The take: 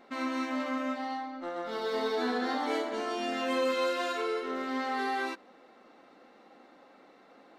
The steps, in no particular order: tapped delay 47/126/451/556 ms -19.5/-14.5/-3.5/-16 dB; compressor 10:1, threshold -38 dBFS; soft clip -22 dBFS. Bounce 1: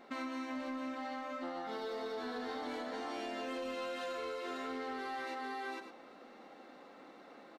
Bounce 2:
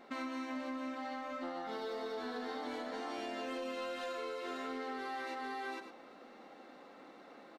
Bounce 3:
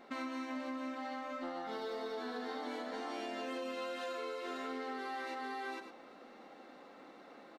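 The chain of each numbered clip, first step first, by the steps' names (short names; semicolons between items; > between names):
tapped delay > soft clip > compressor; soft clip > tapped delay > compressor; tapped delay > compressor > soft clip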